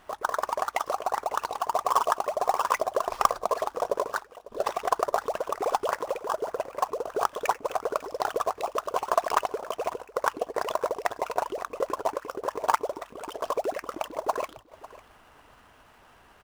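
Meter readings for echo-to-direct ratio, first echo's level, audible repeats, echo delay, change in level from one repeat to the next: −18.5 dB, −18.5 dB, 2, 549 ms, −16.5 dB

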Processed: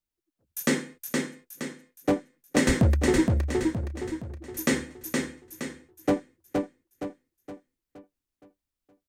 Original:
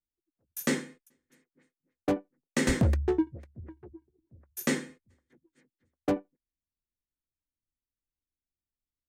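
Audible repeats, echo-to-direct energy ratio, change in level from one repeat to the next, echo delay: 5, −2.5 dB, −7.0 dB, 468 ms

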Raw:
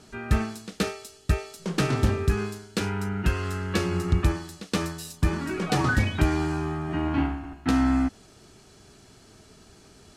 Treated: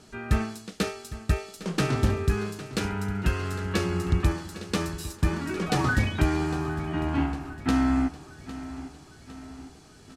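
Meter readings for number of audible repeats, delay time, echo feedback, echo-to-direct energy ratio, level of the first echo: 4, 806 ms, 53%, −13.5 dB, −15.0 dB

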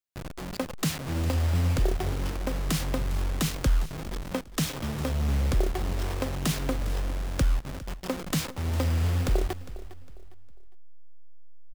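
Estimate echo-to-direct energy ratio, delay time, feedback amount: −16.0 dB, 406 ms, 32%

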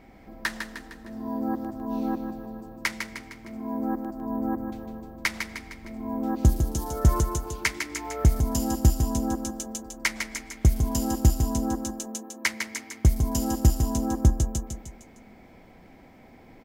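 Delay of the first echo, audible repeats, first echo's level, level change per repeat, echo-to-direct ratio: 153 ms, 4, −6.5 dB, −6.0 dB, −5.5 dB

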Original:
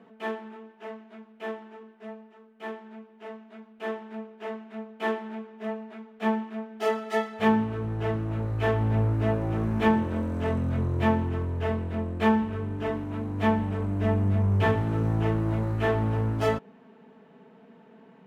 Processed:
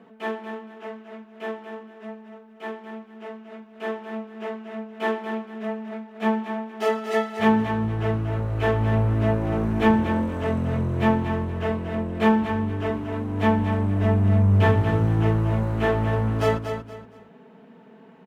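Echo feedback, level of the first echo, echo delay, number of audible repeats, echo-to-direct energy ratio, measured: 29%, −8.0 dB, 235 ms, 3, −7.5 dB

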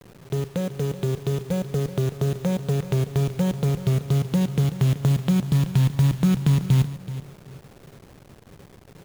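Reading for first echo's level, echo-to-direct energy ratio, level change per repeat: −14.0 dB, −14.0 dB, −13.5 dB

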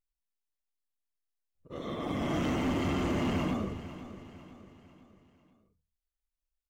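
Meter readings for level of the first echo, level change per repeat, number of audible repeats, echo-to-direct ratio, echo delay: −14.0 dB, −7.0 dB, 4, −13.0 dB, 499 ms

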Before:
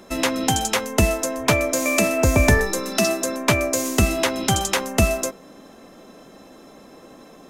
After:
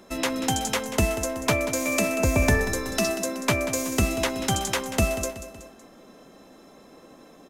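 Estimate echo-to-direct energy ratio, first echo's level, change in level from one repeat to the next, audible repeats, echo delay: −11.5 dB, −12.5 dB, −6.0 dB, 3, 187 ms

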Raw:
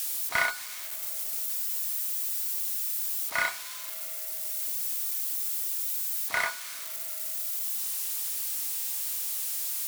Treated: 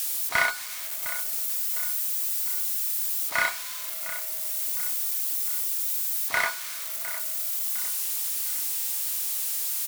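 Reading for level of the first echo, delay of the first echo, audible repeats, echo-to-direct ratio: −14.0 dB, 707 ms, 3, −13.0 dB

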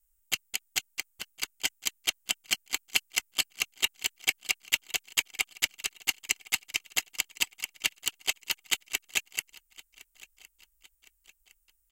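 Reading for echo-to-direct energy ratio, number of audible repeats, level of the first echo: −21.0 dB, 2, −22.0 dB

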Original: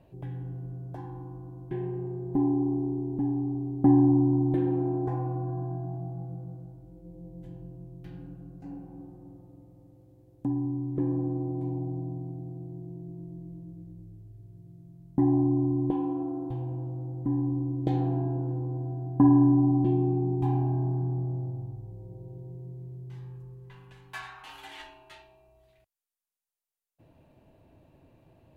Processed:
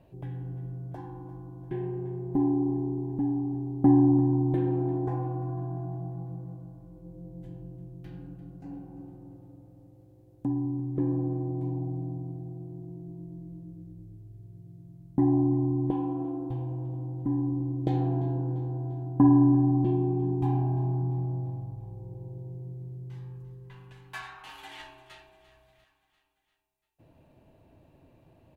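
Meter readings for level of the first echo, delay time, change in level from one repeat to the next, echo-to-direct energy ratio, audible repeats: −16.5 dB, 345 ms, −4.5 dB, −14.5 dB, 4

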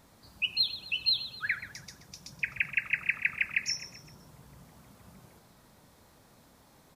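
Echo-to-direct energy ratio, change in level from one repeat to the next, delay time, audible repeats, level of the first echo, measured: −12.5 dB, −7.0 dB, 129 ms, 4, −13.5 dB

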